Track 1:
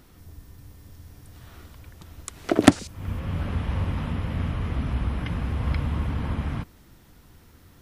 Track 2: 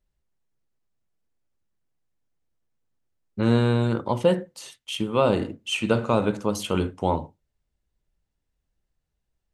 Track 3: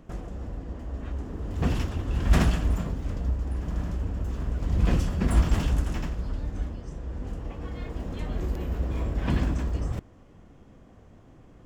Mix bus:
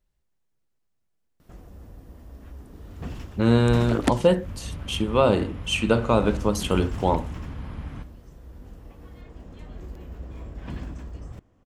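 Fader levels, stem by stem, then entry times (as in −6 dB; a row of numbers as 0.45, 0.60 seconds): −9.0, +1.5, −9.5 decibels; 1.40, 0.00, 1.40 seconds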